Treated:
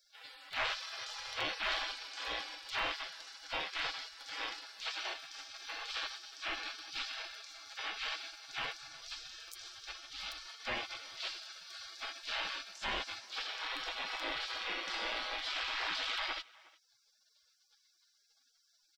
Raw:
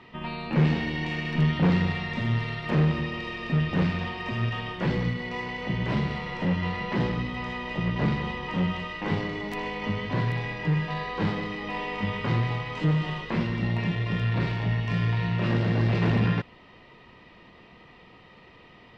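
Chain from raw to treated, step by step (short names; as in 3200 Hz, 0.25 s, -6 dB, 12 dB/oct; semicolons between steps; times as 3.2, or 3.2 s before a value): 8.71–10.49 HPF 190 Hz 6 dB/oct; spectral gate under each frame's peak -30 dB weak; comb 6.2 ms, depth 36%; in parallel at +0.5 dB: limiter -36 dBFS, peak gain reduction 11 dB; on the sum: speakerphone echo 0.36 s, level -22 dB; gain +1 dB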